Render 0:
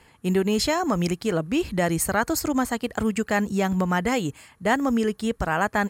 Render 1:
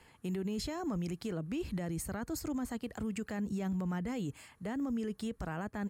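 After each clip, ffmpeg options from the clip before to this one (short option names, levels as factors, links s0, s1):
-filter_complex "[0:a]acrossover=split=350[s0][s1];[s1]acompressor=threshold=0.0224:ratio=4[s2];[s0][s2]amix=inputs=2:normalize=0,alimiter=limit=0.0668:level=0:latency=1:release=25,volume=0.501"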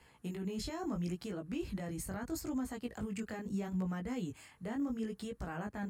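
-af "flanger=delay=15:depth=7.2:speed=0.75,volume=1.12"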